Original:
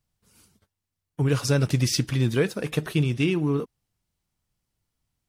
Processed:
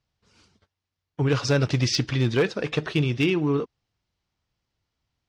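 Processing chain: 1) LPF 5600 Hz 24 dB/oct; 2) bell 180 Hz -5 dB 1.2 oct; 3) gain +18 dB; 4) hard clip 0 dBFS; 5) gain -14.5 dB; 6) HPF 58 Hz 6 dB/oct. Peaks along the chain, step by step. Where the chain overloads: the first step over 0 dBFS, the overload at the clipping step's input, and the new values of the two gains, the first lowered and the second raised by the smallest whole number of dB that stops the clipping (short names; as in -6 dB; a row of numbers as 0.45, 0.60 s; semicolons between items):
-10.5, -11.5, +6.5, 0.0, -14.5, -12.0 dBFS; step 3, 6.5 dB; step 3 +11 dB, step 5 -7.5 dB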